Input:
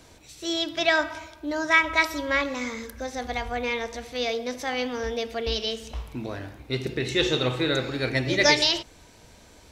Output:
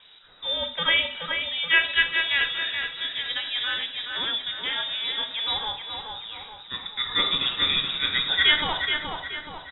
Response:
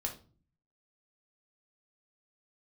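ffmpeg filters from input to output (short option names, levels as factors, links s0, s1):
-filter_complex "[0:a]lowpass=f=3300:t=q:w=0.5098,lowpass=f=3300:t=q:w=0.6013,lowpass=f=3300:t=q:w=0.9,lowpass=f=3300:t=q:w=2.563,afreqshift=-3900,asettb=1/sr,asplit=3[s0][s1][s2];[s0]atrim=end=5.724[s3];[s1]atrim=start=5.72:end=6.99,asetpts=PTS-STARTPTS,afade=t=in:d=0.004:c=qsin,afade=t=out:st=1.266:d=0.004:c=qsin,highshelf=f=2900:g=-10.5[s4];[s2]atrim=start=6.986[s5];[s3][s4]acrossfade=d=0.004:c1=hsin:c2=qsin[s6];[s6][s5]acrossfade=d=0.004:c1=qsin:c2=hsin,asplit=2[s7][s8];[s8]adelay=425,lowpass=f=2600:p=1,volume=0.631,asplit=2[s9][s10];[s10]adelay=425,lowpass=f=2600:p=1,volume=0.54,asplit=2[s11][s12];[s12]adelay=425,lowpass=f=2600:p=1,volume=0.54,asplit=2[s13][s14];[s14]adelay=425,lowpass=f=2600:p=1,volume=0.54,asplit=2[s15][s16];[s16]adelay=425,lowpass=f=2600:p=1,volume=0.54,asplit=2[s17][s18];[s18]adelay=425,lowpass=f=2600:p=1,volume=0.54,asplit=2[s19][s20];[s20]adelay=425,lowpass=f=2600:p=1,volume=0.54[s21];[s7][s9][s11][s13][s15][s17][s19][s21]amix=inputs=8:normalize=0,asplit=2[s22][s23];[1:a]atrim=start_sample=2205,atrim=end_sample=6174,asetrate=48510,aresample=44100[s24];[s23][s24]afir=irnorm=-1:irlink=0,volume=1.06[s25];[s22][s25]amix=inputs=2:normalize=0,volume=0.531"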